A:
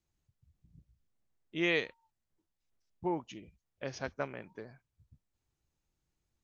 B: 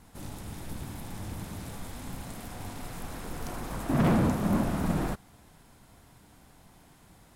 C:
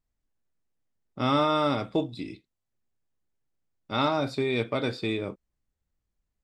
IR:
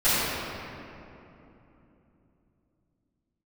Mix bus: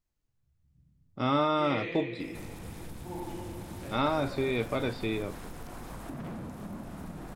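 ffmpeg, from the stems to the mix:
-filter_complex "[0:a]volume=0.282,asplit=2[s0][s1];[s1]volume=0.251[s2];[1:a]adelay=2200,volume=1.06[s3];[2:a]volume=0.75[s4];[s0][s3]amix=inputs=2:normalize=0,acompressor=threshold=0.0126:ratio=12,volume=1[s5];[3:a]atrim=start_sample=2205[s6];[s2][s6]afir=irnorm=-1:irlink=0[s7];[s4][s5][s7]amix=inputs=3:normalize=0,acrossover=split=3500[s8][s9];[s9]acompressor=threshold=0.00355:ratio=4:attack=1:release=60[s10];[s8][s10]amix=inputs=2:normalize=0"

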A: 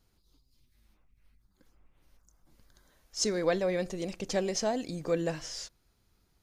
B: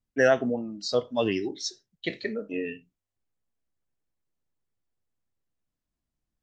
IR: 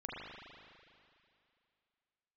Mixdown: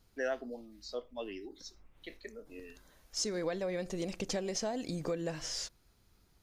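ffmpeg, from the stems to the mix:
-filter_complex "[0:a]acompressor=threshold=0.0178:ratio=6,volume=1.33,asplit=2[s0][s1];[1:a]highpass=f=240:w=0.5412,highpass=f=240:w=1.3066,volume=0.2[s2];[s1]apad=whole_len=283285[s3];[s2][s3]sidechaincompress=threshold=0.00158:ratio=8:attack=7.1:release=241[s4];[s0][s4]amix=inputs=2:normalize=0"

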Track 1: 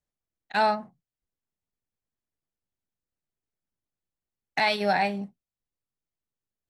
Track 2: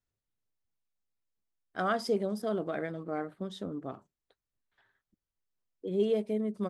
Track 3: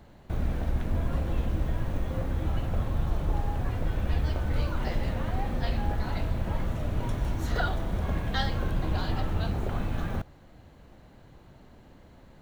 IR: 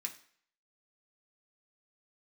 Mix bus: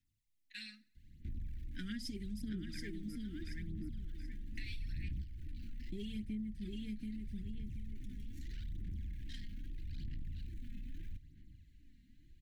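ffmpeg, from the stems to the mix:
-filter_complex "[0:a]highpass=f=970:p=1,volume=0.15,asplit=3[s0][s1][s2];[s1]volume=0.596[s3];[1:a]volume=1,asplit=3[s4][s5][s6];[s4]atrim=end=3.16,asetpts=PTS-STARTPTS,afade=t=out:st=3.156:d=0.004:c=hsin[s7];[s5]atrim=start=3.16:end=5.92,asetpts=PTS-STARTPTS,volume=0[s8];[s6]atrim=start=5.92,asetpts=PTS-STARTPTS,afade=t=in:d=0.004:c=hsin[s9];[s7][s8][s9]concat=n=3:v=0:a=1,asplit=2[s10][s11];[s11]volume=0.596[s12];[2:a]lowshelf=f=82:g=7.5,asoftclip=type=tanh:threshold=0.0447,adelay=950,volume=0.596[s13];[s2]apad=whole_len=589469[s14];[s13][s14]sidechaingate=range=0.316:threshold=0.00112:ratio=16:detection=peak[s15];[3:a]atrim=start_sample=2205[s16];[s3][s16]afir=irnorm=-1:irlink=0[s17];[s12]aecho=0:1:730|1460|2190|2920:1|0.28|0.0784|0.022[s18];[s0][s10][s15][s17][s18]amix=inputs=5:normalize=0,aphaser=in_gain=1:out_gain=1:delay=4.3:decay=0.57:speed=0.79:type=sinusoidal,asuperstop=centerf=760:order=12:qfactor=0.51,acompressor=threshold=0.0112:ratio=6"

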